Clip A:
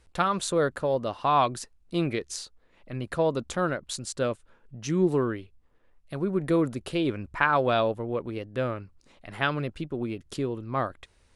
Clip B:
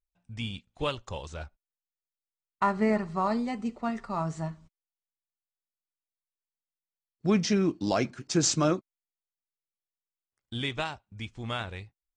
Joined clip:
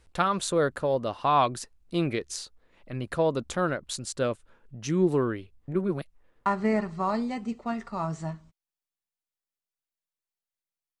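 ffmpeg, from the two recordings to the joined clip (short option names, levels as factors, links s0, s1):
-filter_complex "[0:a]apad=whole_dur=11,atrim=end=11,asplit=2[s0][s1];[s0]atrim=end=5.682[s2];[s1]atrim=start=5.678:end=6.462,asetpts=PTS-STARTPTS,areverse[s3];[1:a]atrim=start=2.628:end=7.17[s4];[s2][s3]acrossfade=d=0.004:c1=hsin:c2=hsin[s5];[s5][s4]acrossfade=d=0.004:c1=hsin:c2=hsin"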